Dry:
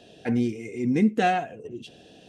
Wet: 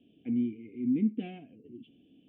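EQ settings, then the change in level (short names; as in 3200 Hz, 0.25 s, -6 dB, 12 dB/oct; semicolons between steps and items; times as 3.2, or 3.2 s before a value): vocal tract filter i; -1.5 dB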